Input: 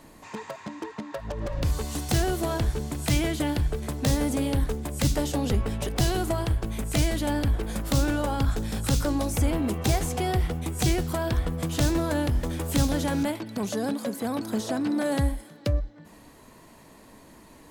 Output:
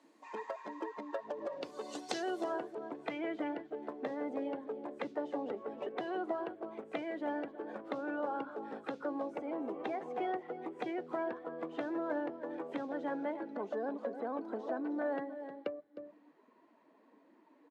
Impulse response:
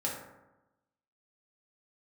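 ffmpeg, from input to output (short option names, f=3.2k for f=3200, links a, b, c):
-af "asetnsamples=n=441:p=0,asendcmd='2.44 lowpass f 2200',lowpass=6.9k,aecho=1:1:309:0.266,acompressor=threshold=-30dB:ratio=2,afftdn=nr=13:nf=-41,highpass=f=320:w=0.5412,highpass=f=320:w=1.3066,volume=-2.5dB"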